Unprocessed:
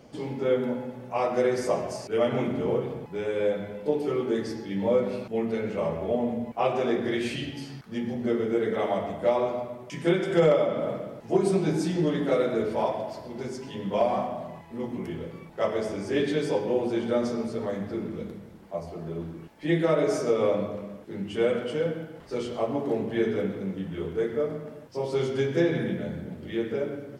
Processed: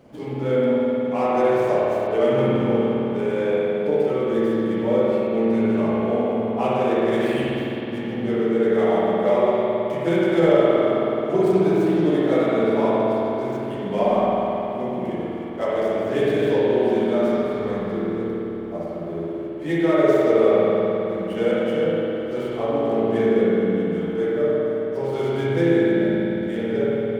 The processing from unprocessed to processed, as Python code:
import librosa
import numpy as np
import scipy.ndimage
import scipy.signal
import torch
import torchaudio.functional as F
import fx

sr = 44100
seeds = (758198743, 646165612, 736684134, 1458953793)

y = scipy.signal.medfilt(x, 9)
y = fx.rev_spring(y, sr, rt60_s=3.5, pass_ms=(53,), chirp_ms=40, drr_db=-6.0)